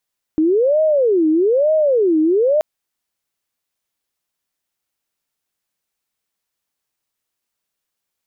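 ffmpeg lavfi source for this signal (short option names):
-f lavfi -i "aevalsrc='0.266*sin(2*PI*(469.5*t-159.5/(2*PI*1.1)*sin(2*PI*1.1*t)))':d=2.23:s=44100"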